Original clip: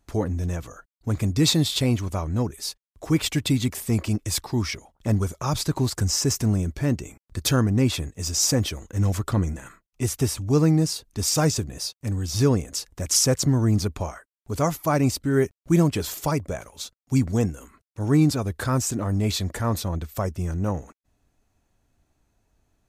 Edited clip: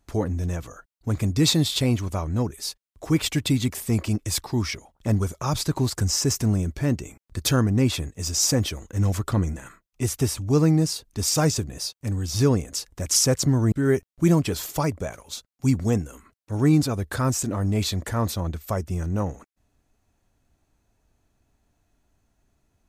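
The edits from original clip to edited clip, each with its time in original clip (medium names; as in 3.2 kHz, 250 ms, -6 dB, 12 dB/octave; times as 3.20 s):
13.72–15.20 s: delete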